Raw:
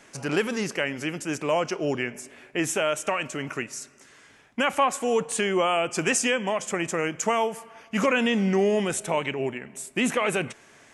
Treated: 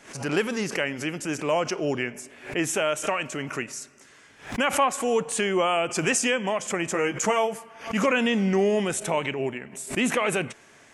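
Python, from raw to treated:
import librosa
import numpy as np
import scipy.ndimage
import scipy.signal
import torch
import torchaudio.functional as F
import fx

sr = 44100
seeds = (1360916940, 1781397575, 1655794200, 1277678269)

y = fx.doubler(x, sr, ms=15.0, db=-5.0, at=(6.93, 7.58))
y = fx.pre_swell(y, sr, db_per_s=140.0)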